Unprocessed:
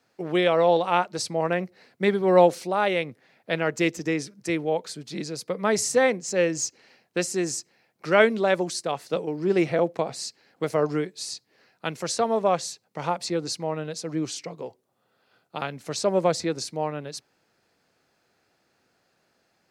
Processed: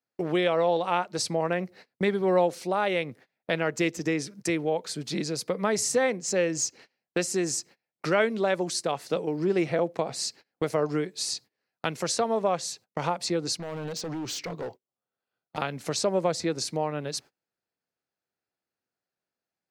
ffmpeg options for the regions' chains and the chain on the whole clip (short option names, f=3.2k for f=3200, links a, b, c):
-filter_complex "[0:a]asettb=1/sr,asplit=3[a][b][c];[a]atrim=end=13.574[d];[b]atrim=start=13.57:end=15.58,asetpts=PTS-STARTPTS,afade=t=in:d=0.004:c=qsin,afade=t=out:st=2.006:d=0.004:c=qsin,equalizer=f=10k:t=o:w=0.94:g=-10.5,acompressor=threshold=-32dB:ratio=4:attack=3.2:release=140:knee=1:detection=peak,asoftclip=type=hard:threshold=-36dB[e];[c]atrim=start=15.576[f];[d][e]acrossfade=d=0.004:c1=hsin:c2=qsin[g];[g][f]acrossfade=d=0.004:c1=qsin:c2=hsin,agate=range=-29dB:threshold=-48dB:ratio=16:detection=peak,acompressor=threshold=-35dB:ratio=2,volume=6dB"